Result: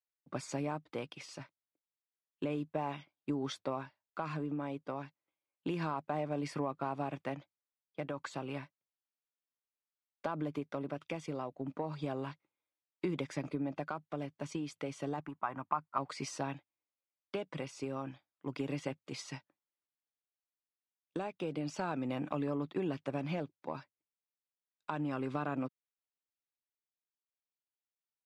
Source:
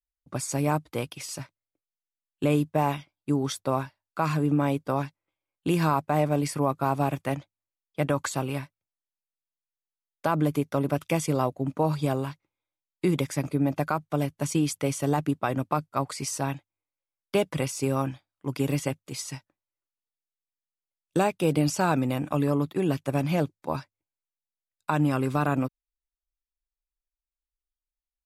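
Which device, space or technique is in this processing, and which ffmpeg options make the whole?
AM radio: -filter_complex "[0:a]highpass=170,lowpass=4000,acompressor=threshold=-28dB:ratio=5,asoftclip=type=tanh:threshold=-17.5dB,tremolo=f=0.31:d=0.34,asettb=1/sr,asplit=3[link_01][link_02][link_03];[link_01]atrim=end=15.204[link_04];[link_02]atrim=start=15.2:end=15.98,asetpts=PTS-STARTPTS,afade=type=in:duration=0.004:curve=qsin,afade=type=out:start_time=0.776:duration=0.004:curve=qsin,equalizer=frequency=125:width_type=o:width=1:gain=-4,equalizer=frequency=250:width_type=o:width=1:gain=-5,equalizer=frequency=500:width_type=o:width=1:gain=-11,equalizer=frequency=1000:width_type=o:width=1:gain=11,equalizer=frequency=4000:width_type=o:width=1:gain=-12,equalizer=frequency=8000:width_type=o:width=1:gain=-5[link_05];[link_03]atrim=start=15.976[link_06];[link_04][link_05]acrossfade=duration=0.004:curve1=hsin:curve2=qsin[link_07];[link_07][link_06]acrossfade=duration=0.004:curve1=qsin:curve2=hsin,volume=-3dB"

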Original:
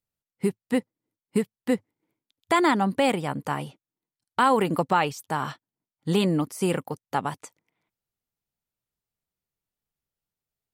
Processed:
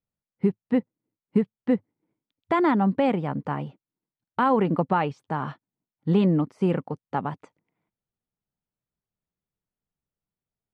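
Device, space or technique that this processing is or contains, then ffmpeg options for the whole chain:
phone in a pocket: -af "lowpass=3700,equalizer=frequency=190:width_type=o:width=1.1:gain=4,highshelf=frequency=2200:gain=-11.5"

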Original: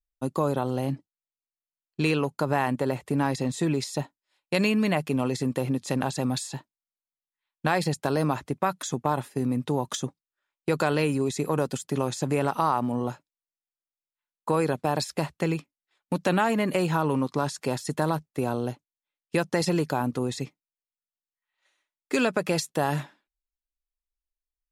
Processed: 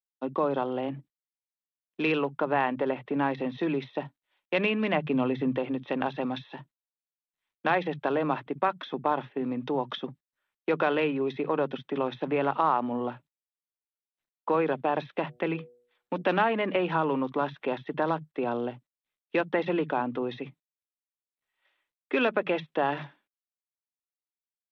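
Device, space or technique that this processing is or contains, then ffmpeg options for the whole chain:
Bluetooth headset: -filter_complex "[0:a]highpass=83,asettb=1/sr,asplit=3[link_01][link_02][link_03];[link_01]atrim=end=4.934[link_04];[link_02]atrim=start=4.93:end=5.56,asetpts=PTS-STARTPTS,afade=type=in:duration=0.004:curve=qsin,afade=type=out:start_time=0.626:duration=0.004:curve=qsin,bass=frequency=250:gain=8,treble=frequency=4000:gain=-1[link_05];[link_03]atrim=start=5.556[link_06];[link_04][link_05]acrossfade=duration=0.004:curve1=hsin:curve2=qsin[link_07];[link_07][link_06]acrossfade=duration=0.004:curve1=qsin:curve2=hsin,asplit=3[link_08][link_09][link_10];[link_08]afade=type=out:start_time=15.28:duration=0.02[link_11];[link_09]bandreject=frequency=121.6:width_type=h:width=4,bandreject=frequency=243.2:width_type=h:width=4,bandreject=frequency=364.8:width_type=h:width=4,bandreject=frequency=486.4:width_type=h:width=4,bandreject=frequency=608:width_type=h:width=4,bandreject=frequency=729.6:width_type=h:width=4,afade=type=in:start_time=15.28:duration=0.02,afade=type=out:start_time=16.21:duration=0.02[link_12];[link_10]afade=type=in:start_time=16.21:duration=0.02[link_13];[link_11][link_12][link_13]amix=inputs=3:normalize=0,highpass=220,acrossover=split=170[link_14][link_15];[link_14]adelay=50[link_16];[link_16][link_15]amix=inputs=2:normalize=0,aresample=8000,aresample=44100" -ar 32000 -c:a sbc -b:a 64k

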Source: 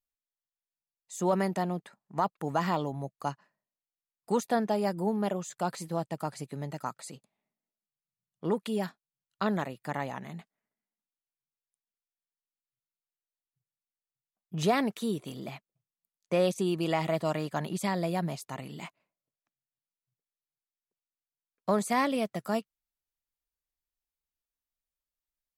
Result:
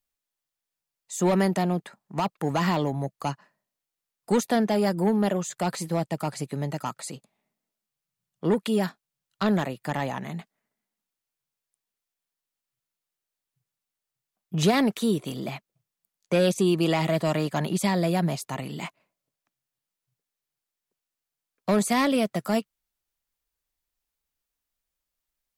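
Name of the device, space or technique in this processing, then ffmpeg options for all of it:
one-band saturation: -filter_complex "[0:a]acrossover=split=390|2200[link_01][link_02][link_03];[link_02]asoftclip=type=tanh:threshold=-31dB[link_04];[link_01][link_04][link_03]amix=inputs=3:normalize=0,volume=7.5dB"

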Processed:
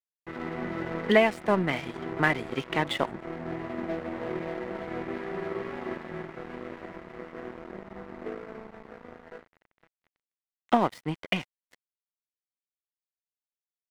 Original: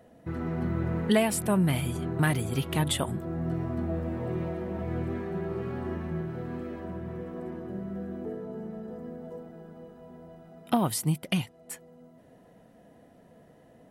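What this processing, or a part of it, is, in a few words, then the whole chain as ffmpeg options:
pocket radio on a weak battery: -filter_complex "[0:a]asettb=1/sr,asplit=3[link_01][link_02][link_03];[link_01]atrim=end=7.444[link_04];[link_02]atrim=start=7.44:end=8.54,asetpts=PTS-STARTPTS,afade=type=in:duration=0.004:curve=qsin,afade=type=out:start_time=1.096:duration=0.004:curve=qsin,highpass=frequency=87:width=0.5412,highpass=frequency=87:width=1.3066[link_05];[link_03]atrim=start=8.536[link_06];[link_04][link_05]acrossfade=duration=0.004:curve1=hsin:curve2=qsin[link_07];[link_07][link_06]acrossfade=duration=0.004:curve1=qsin:curve2=hsin,highpass=300,lowpass=3300,aeval=exprs='sgn(val(0))*max(abs(val(0))-0.00794,0)':channel_layout=same,equalizer=frequency=2000:width_type=o:width=0.28:gain=6.5,highshelf=frequency=4300:gain=-5.5,volume=6dB"

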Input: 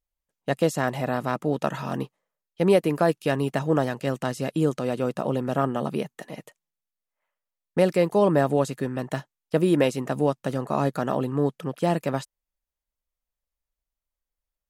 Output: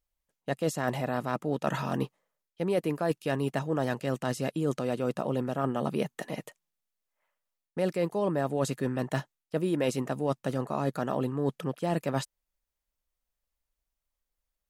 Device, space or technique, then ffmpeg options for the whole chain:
compression on the reversed sound: -af "areverse,acompressor=threshold=-27dB:ratio=6,areverse,volume=2dB"

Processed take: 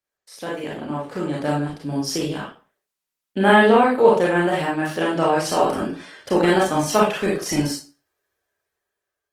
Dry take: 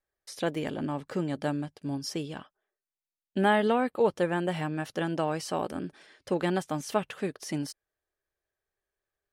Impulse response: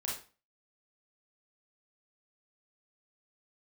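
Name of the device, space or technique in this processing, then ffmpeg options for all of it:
far-field microphone of a smart speaker: -filter_complex "[1:a]atrim=start_sample=2205[link_01];[0:a][link_01]afir=irnorm=-1:irlink=0,highpass=frequency=150:poles=1,dynaudnorm=framelen=420:gausssize=7:maxgain=10.5dB,volume=1.5dB" -ar 48000 -c:a libopus -b:a 20k

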